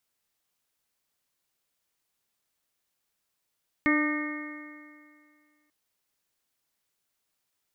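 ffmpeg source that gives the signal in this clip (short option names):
-f lavfi -i "aevalsrc='0.0841*pow(10,-3*t/2.13)*sin(2*PI*298.22*t)+0.0211*pow(10,-3*t/2.13)*sin(2*PI*597.79*t)+0.0112*pow(10,-3*t/2.13)*sin(2*PI*900.01*t)+0.0316*pow(10,-3*t/2.13)*sin(2*PI*1206.22*t)+0.00944*pow(10,-3*t/2.13)*sin(2*PI*1517.68*t)+0.0501*pow(10,-3*t/2.13)*sin(2*PI*1835.64*t)+0.0501*pow(10,-3*t/2.13)*sin(2*PI*2161.3*t)':d=1.84:s=44100"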